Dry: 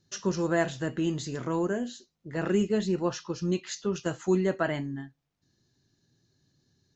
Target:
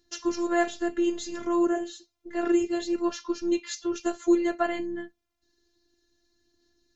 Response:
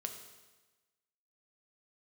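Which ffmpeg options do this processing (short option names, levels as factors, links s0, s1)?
-af "afftfilt=real='hypot(re,im)*cos(PI*b)':imag='0':win_size=512:overlap=0.75,aphaser=in_gain=1:out_gain=1:delay=2.7:decay=0.25:speed=0.6:type=sinusoidal,volume=1.68"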